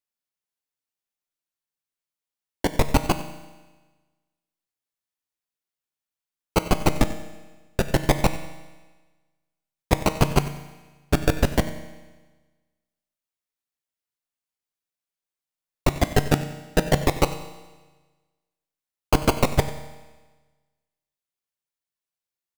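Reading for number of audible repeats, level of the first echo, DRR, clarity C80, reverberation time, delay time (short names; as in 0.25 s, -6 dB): 1, -17.0 dB, 8.5 dB, 11.5 dB, 1.3 s, 93 ms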